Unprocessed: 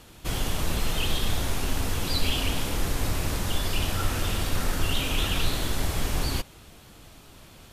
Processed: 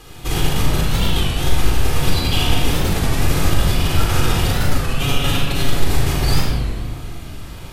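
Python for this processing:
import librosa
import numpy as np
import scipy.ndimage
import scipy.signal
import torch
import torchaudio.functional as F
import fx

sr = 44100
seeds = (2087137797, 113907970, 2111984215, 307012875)

y = fx.comb(x, sr, ms=7.2, depth=0.62, at=(4.69, 5.71))
y = fx.over_compress(y, sr, threshold_db=-27.0, ratio=-1.0)
y = fx.room_flutter(y, sr, wall_m=6.6, rt60_s=0.35)
y = fx.room_shoebox(y, sr, seeds[0], volume_m3=2700.0, walls='mixed', distance_m=3.9)
y = fx.record_warp(y, sr, rpm=33.33, depth_cents=160.0)
y = y * 10.0 ** (1.5 / 20.0)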